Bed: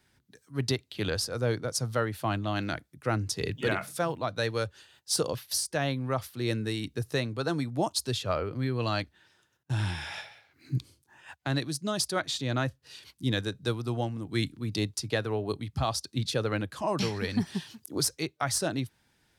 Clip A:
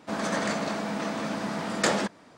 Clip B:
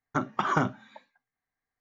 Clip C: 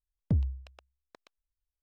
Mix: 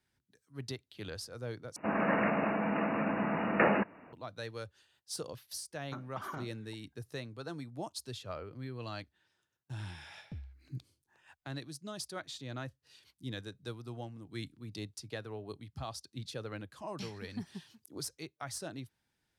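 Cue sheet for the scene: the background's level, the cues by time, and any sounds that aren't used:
bed −12.5 dB
0:01.76: overwrite with A −1 dB + linear-phase brick-wall low-pass 2,900 Hz
0:05.77: mix in B −14.5 dB + brickwall limiter −16.5 dBFS
0:10.01: mix in C −18 dB

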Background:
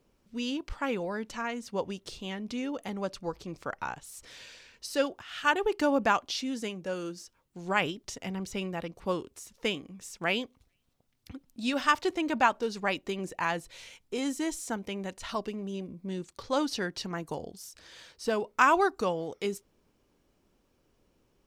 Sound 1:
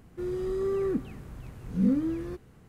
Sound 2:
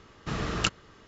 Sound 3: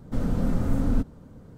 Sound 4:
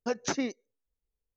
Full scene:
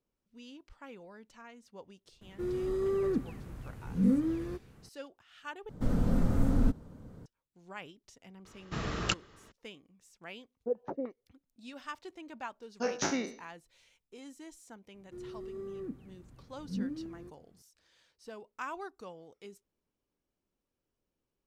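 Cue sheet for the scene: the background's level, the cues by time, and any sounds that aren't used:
background −17.5 dB
0:02.21: mix in 1 −2 dB
0:05.69: overwrite with 3 −3 dB
0:08.45: mix in 2 −4 dB
0:10.60: mix in 4 −10.5 dB + low-pass on a step sequencer 6.6 Hz 460–1,500 Hz
0:12.74: mix in 4 −3 dB, fades 0.10 s + peak hold with a decay on every bin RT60 0.43 s
0:14.94: mix in 1 −16.5 dB + parametric band 210 Hz +5.5 dB 2.3 octaves

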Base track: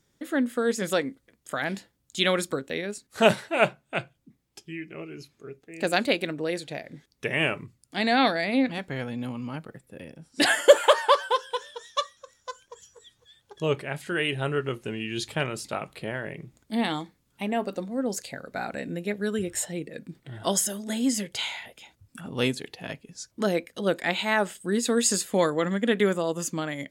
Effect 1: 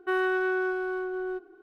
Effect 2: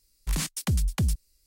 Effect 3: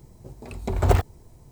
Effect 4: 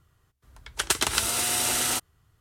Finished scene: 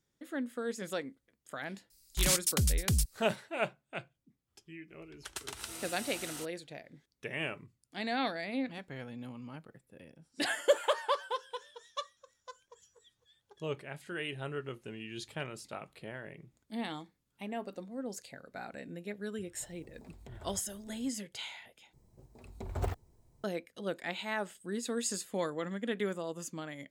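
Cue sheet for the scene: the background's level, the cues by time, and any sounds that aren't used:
base track −11.5 dB
0:01.90: mix in 2 −4.5 dB + high-shelf EQ 2,500 Hz +9.5 dB
0:04.46: mix in 4 −18 dB, fades 0.05 s
0:19.59: mix in 3 −11.5 dB + downward compressor 3 to 1, threshold −41 dBFS
0:21.93: overwrite with 3 −15.5 dB
not used: 1

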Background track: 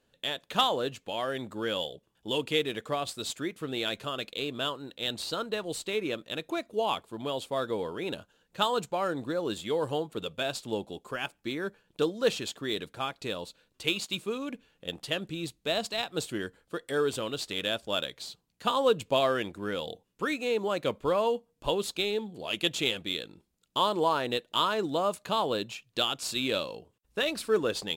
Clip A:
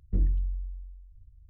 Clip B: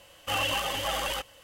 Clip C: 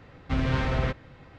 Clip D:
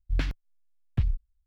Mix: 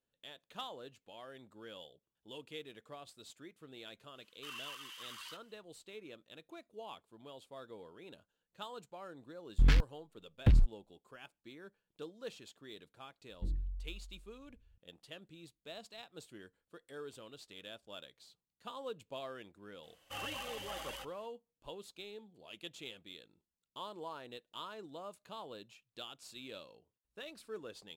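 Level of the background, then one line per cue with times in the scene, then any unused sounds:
background track −19 dB
0:04.15: mix in B −16 dB + Chebyshev high-pass with heavy ripple 950 Hz, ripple 3 dB
0:09.49: mix in D −4.5 dB + leveller curve on the samples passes 3
0:13.29: mix in A −12 dB
0:19.83: mix in B −14.5 dB
not used: C

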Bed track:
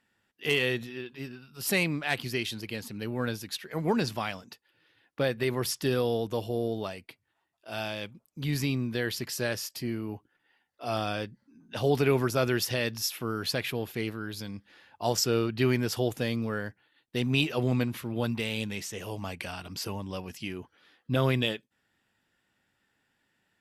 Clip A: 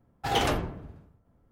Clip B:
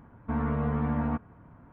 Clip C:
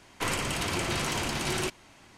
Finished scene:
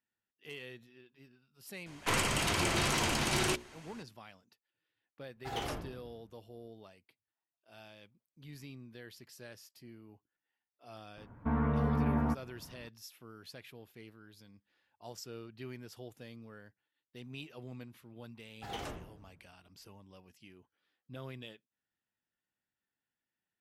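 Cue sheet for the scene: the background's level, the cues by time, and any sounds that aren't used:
bed track −20 dB
0:01.86: mix in C −0.5 dB + mains-hum notches 60/120/180/240/300/360/420/480/540 Hz
0:05.21: mix in A −12.5 dB
0:11.17: mix in B −2 dB
0:18.38: mix in A −16 dB

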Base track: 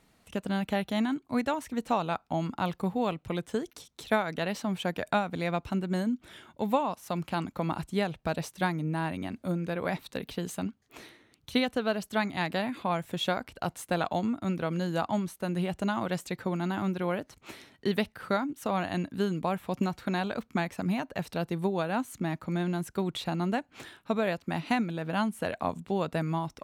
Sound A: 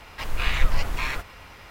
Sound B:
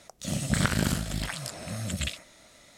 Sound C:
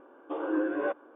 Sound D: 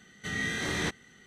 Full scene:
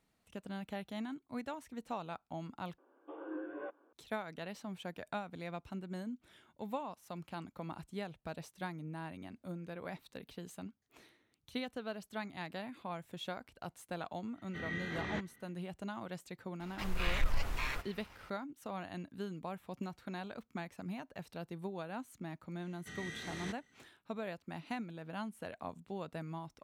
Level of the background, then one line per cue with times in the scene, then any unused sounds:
base track −13 dB
0:02.78: overwrite with C −14 dB
0:14.30: mix in D −8 dB, fades 0.10 s + low-pass filter 2,600 Hz
0:16.60: mix in A −13 dB + leveller curve on the samples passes 1
0:22.62: mix in D −13.5 dB
not used: B

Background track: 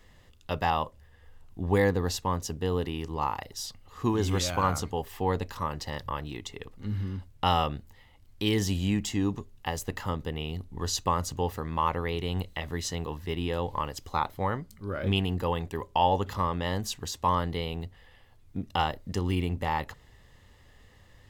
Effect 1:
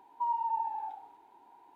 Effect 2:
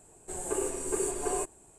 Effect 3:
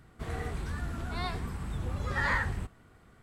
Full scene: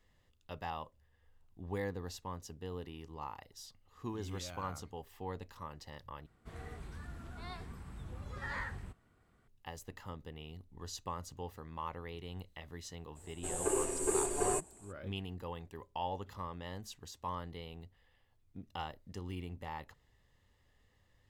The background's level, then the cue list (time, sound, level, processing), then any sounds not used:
background track −14.5 dB
0:06.26: overwrite with 3 −11.5 dB
0:13.15: mix in 2 −1.5 dB, fades 0.02 s
not used: 1

